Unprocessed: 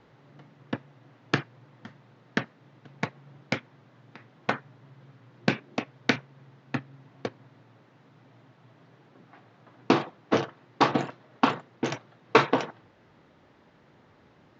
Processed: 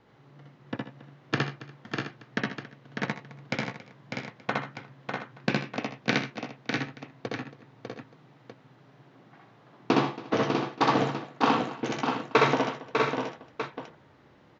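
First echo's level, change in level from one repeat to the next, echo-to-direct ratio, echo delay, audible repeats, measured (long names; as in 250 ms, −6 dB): −1.5 dB, repeats not evenly spaced, 2.5 dB, 64 ms, 10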